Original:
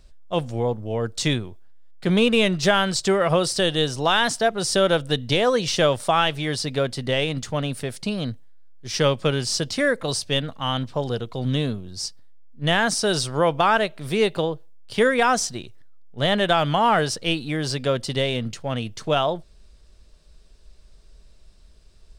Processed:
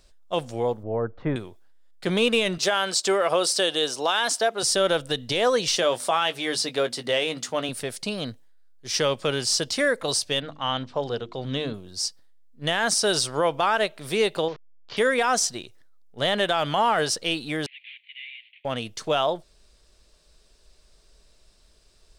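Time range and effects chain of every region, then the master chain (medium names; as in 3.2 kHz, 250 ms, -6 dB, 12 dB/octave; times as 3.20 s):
0.83–1.36 s: low-pass 1.5 kHz 24 dB/octave + bass shelf 140 Hz +6.5 dB
2.58–4.63 s: high-pass 270 Hz + band-stop 1.9 kHz, Q 19
5.77–7.69 s: high-pass 170 Hz + hum notches 50/100/150/200/250 Hz + doubling 17 ms -10.5 dB
10.40–11.74 s: distance through air 100 m + hum notches 50/100/150/200/250/300/350 Hz
14.48–14.97 s: one-bit delta coder 32 kbps, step -33 dBFS + low-pass 4.7 kHz + compression 2:1, threshold -30 dBFS
17.66–18.65 s: CVSD coder 16 kbps + steep high-pass 2.1 kHz 72 dB/octave
whole clip: tone controls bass -9 dB, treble +3 dB; peak limiter -12 dBFS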